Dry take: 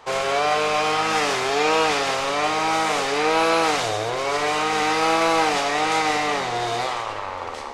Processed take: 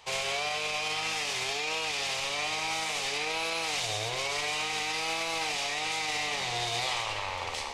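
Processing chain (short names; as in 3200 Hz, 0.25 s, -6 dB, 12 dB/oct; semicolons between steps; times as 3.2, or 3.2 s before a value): EQ curve 130 Hz 0 dB, 270 Hz -10 dB, 890 Hz -4 dB, 1400 Hz -9 dB, 2400 Hz +5 dB; limiter -16.5 dBFS, peak gain reduction 7.5 dB; vocal rider within 5 dB 0.5 s; gain -5.5 dB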